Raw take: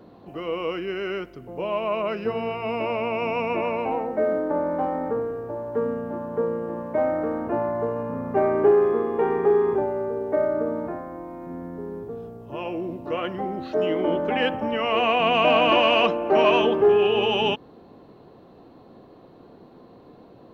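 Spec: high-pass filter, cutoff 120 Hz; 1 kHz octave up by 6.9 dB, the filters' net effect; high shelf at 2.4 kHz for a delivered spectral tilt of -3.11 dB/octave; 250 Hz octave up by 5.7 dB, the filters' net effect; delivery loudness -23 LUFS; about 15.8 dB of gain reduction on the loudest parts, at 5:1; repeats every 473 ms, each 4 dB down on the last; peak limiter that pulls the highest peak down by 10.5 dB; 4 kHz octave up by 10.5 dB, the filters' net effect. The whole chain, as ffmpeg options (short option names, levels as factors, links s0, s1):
-af "highpass=120,equalizer=f=250:t=o:g=7,equalizer=f=1000:t=o:g=6.5,highshelf=f=2400:g=8.5,equalizer=f=4000:t=o:g=8.5,acompressor=threshold=0.0447:ratio=5,alimiter=level_in=1.26:limit=0.0631:level=0:latency=1,volume=0.794,aecho=1:1:473|946|1419|1892|2365|2838|3311|3784|4257:0.631|0.398|0.25|0.158|0.0994|0.0626|0.0394|0.0249|0.0157,volume=2.99"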